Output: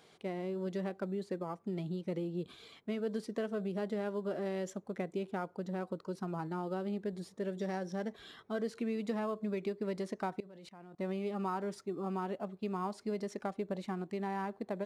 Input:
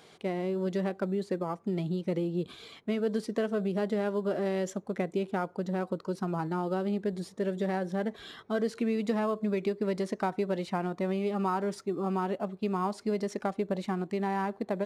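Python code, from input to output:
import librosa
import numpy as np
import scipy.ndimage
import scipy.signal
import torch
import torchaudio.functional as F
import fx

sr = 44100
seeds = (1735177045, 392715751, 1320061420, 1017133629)

y = fx.peak_eq(x, sr, hz=5600.0, db=12.0, octaves=0.35, at=(7.59, 8.12))
y = fx.level_steps(y, sr, step_db=23, at=(10.4, 10.99))
y = F.gain(torch.from_numpy(y), -6.5).numpy()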